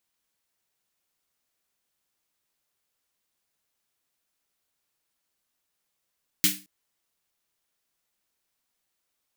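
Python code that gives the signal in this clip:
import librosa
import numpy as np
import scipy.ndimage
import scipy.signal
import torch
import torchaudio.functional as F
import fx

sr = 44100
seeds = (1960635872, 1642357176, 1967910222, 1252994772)

y = fx.drum_snare(sr, seeds[0], length_s=0.22, hz=190.0, second_hz=300.0, noise_db=11.5, noise_from_hz=1800.0, decay_s=0.35, noise_decay_s=0.29)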